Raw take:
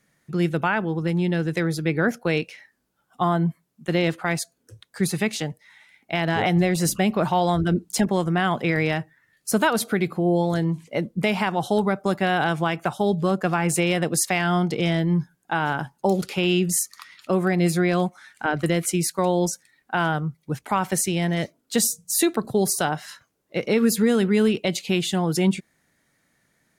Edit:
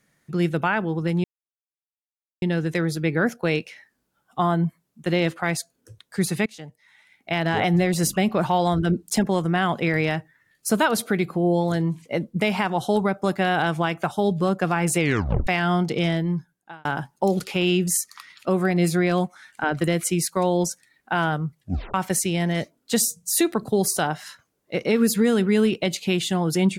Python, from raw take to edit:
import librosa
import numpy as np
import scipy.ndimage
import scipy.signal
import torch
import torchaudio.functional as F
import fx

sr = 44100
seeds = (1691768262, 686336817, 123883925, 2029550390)

y = fx.edit(x, sr, fx.insert_silence(at_s=1.24, length_s=1.18),
    fx.fade_in_from(start_s=5.28, length_s=0.87, floor_db=-19.0),
    fx.tape_stop(start_s=13.81, length_s=0.48),
    fx.fade_out_span(start_s=14.88, length_s=0.79),
    fx.tape_stop(start_s=20.39, length_s=0.37), tone=tone)